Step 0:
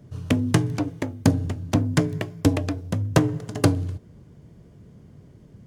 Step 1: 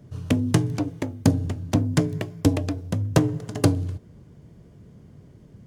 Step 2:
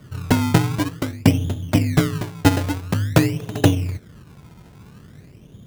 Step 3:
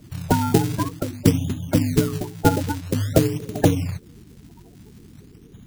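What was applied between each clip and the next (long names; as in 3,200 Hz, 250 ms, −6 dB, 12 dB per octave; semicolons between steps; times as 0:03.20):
dynamic equaliser 1,600 Hz, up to −4 dB, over −38 dBFS, Q 0.72
sample-and-hold swept by an LFO 26×, swing 100% 0.49 Hz; level +4 dB
spectral magnitudes quantised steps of 30 dB; level −1 dB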